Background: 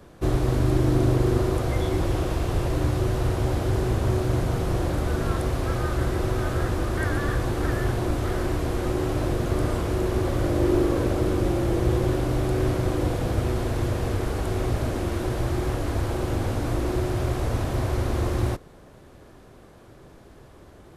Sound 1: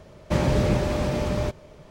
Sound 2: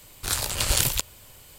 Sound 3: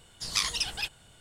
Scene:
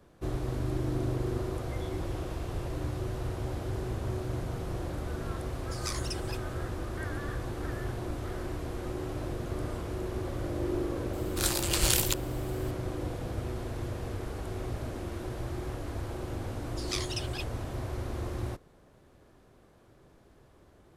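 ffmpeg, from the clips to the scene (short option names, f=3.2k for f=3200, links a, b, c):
-filter_complex "[3:a]asplit=2[a][b];[0:a]volume=-10.5dB[c];[a]equalizer=f=3.2k:w=1.2:g=-12.5[d];[2:a]asoftclip=type=hard:threshold=-9dB[e];[d]atrim=end=1.2,asetpts=PTS-STARTPTS,volume=-4.5dB,afade=t=in:d=0.004:c=hsin,afade=t=out:st=1.196:d=0.004:c=hsin,adelay=5500[f];[e]atrim=end=1.58,asetpts=PTS-STARTPTS,volume=-3.5dB,afade=t=in:d=0.004:c=hsin,afade=t=out:st=1.576:d=0.004:c=hsin,adelay=11130[g];[b]atrim=end=1.2,asetpts=PTS-STARTPTS,volume=-7.5dB,afade=t=in:d=0.004:c=hsin,afade=t=out:st=1.196:d=0.004:c=hsin,adelay=16560[h];[c][f][g][h]amix=inputs=4:normalize=0"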